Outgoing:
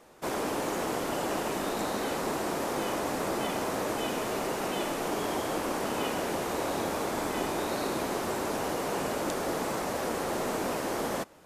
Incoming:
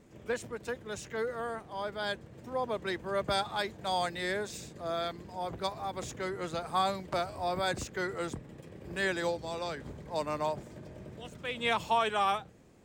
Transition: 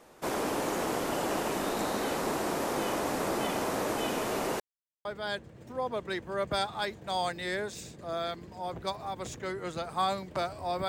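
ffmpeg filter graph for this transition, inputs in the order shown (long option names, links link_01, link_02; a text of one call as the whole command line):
ffmpeg -i cue0.wav -i cue1.wav -filter_complex "[0:a]apad=whole_dur=10.88,atrim=end=10.88,asplit=2[link_01][link_02];[link_01]atrim=end=4.6,asetpts=PTS-STARTPTS,afade=type=out:start_time=4.596:duration=0.004:curve=hsin[link_03];[link_02]atrim=start=4.6:end=5.05,asetpts=PTS-STARTPTS,volume=0[link_04];[1:a]atrim=start=1.82:end=7.65,asetpts=PTS-STARTPTS,afade=type=in:duration=0.004:curve=hsin[link_05];[link_03][link_04][link_05]concat=n=3:v=0:a=1" out.wav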